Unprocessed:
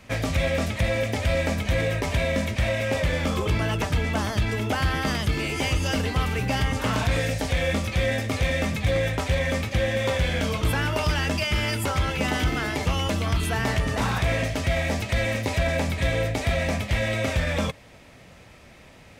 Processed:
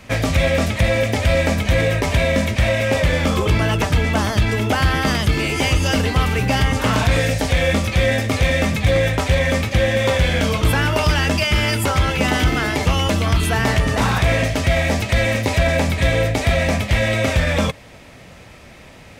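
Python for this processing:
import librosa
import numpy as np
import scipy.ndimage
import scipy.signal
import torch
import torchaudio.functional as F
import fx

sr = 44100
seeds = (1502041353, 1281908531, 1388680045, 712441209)

y = x * librosa.db_to_amplitude(7.0)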